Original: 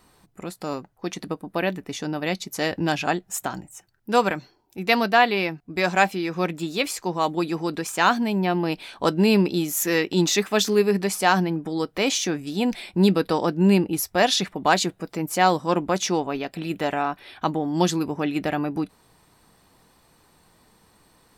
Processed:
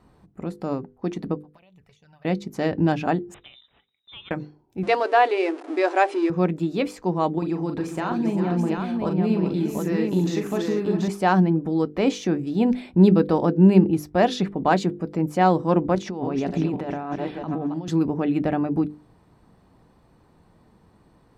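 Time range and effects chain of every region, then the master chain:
1.38–2.25 passive tone stack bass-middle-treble 10-0-10 + envelope flanger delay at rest 10.8 ms, full sweep at -33.5 dBFS + compressor 8:1, threshold -50 dBFS
3.34–4.31 median filter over 9 samples + inverted band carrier 3800 Hz + compressor 2:1, threshold -43 dBFS
4.83–6.3 zero-crossing step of -29 dBFS + brick-wall FIR band-pass 270–11000 Hz
7.38–11.08 compressor 3:1, threshold -25 dBFS + tapped delay 40/396/439/733 ms -6.5/-10/-15/-4 dB
15.95–17.88 regenerating reverse delay 0.273 s, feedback 58%, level -11.5 dB + bell 14000 Hz -6 dB 0.73 oct + negative-ratio compressor -30 dBFS
whole clip: HPF 190 Hz 6 dB/oct; tilt -4.5 dB/oct; notches 50/100/150/200/250/300/350/400/450/500 Hz; gain -1.5 dB

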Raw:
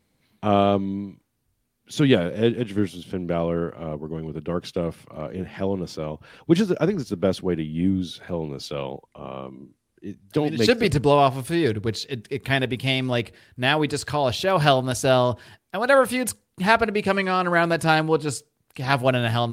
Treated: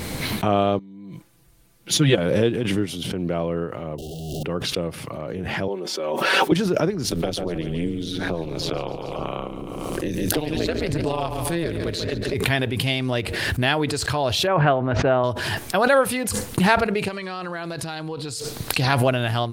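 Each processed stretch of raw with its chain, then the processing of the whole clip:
0.79–2.18 comb 5.9 ms, depth 83% + upward expander 2.5:1, over -28 dBFS
3.98–4.43 infinite clipping + brick-wall FIR band-stop 790–2700 Hz
5.68–6.52 HPF 270 Hz 24 dB/oct + comb 5.3 ms, depth 72%
7.11–12.34 AM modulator 170 Hz, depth 85% + feedback echo 0.14 s, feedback 42%, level -13.5 dB + three-band squash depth 100%
14.47–15.24 LPF 2200 Hz 24 dB/oct + low shelf 75 Hz -10.5 dB
17.08–18.87 bell 4200 Hz +8 dB 0.69 oct + compressor 16:1, threshold -25 dBFS
whole clip: bell 220 Hz -5 dB 0.22 oct; backwards sustainer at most 24 dB/s; gain -1 dB

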